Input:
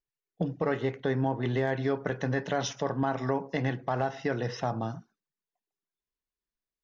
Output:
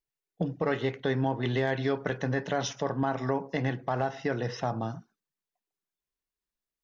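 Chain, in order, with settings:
0:00.66–0:02.18: dynamic equaliser 3,600 Hz, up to +6 dB, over −51 dBFS, Q 0.89

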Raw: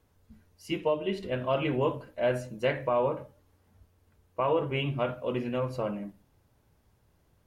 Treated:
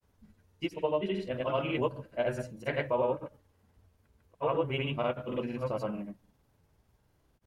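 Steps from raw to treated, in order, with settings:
granular cloud, pitch spread up and down by 0 semitones
level −1 dB

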